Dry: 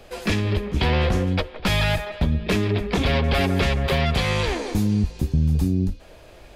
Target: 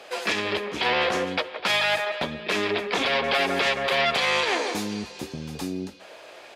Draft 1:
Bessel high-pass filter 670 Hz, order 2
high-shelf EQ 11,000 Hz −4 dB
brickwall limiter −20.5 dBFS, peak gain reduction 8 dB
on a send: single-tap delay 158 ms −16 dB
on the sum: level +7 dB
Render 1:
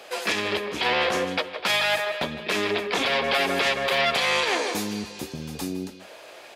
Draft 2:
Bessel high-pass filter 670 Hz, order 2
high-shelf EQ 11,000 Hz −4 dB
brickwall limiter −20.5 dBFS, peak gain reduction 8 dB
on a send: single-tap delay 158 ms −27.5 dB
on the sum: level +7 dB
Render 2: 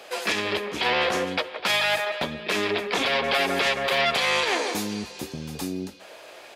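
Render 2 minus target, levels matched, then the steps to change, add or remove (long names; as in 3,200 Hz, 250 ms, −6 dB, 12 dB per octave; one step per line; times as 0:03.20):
8,000 Hz band +2.5 dB
change: high-shelf EQ 11,000 Hz −15.5 dB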